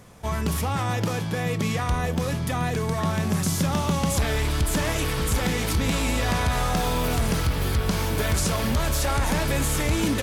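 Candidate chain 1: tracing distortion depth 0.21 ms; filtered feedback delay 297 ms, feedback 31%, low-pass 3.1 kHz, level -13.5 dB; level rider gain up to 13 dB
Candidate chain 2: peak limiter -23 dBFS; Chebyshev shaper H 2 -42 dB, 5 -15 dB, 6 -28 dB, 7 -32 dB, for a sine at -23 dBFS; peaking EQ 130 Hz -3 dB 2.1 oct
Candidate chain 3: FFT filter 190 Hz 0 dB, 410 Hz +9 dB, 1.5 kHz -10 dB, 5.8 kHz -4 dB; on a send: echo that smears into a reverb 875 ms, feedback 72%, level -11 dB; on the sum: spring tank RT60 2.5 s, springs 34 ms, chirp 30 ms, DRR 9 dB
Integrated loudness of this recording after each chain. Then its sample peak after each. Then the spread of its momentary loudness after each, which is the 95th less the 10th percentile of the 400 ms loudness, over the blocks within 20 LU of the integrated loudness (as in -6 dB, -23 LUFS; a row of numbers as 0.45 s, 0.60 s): -13.5 LUFS, -31.0 LUFS, -23.0 LUFS; -3.0 dBFS, -21.0 dBFS, -8.0 dBFS; 3 LU, 1 LU, 3 LU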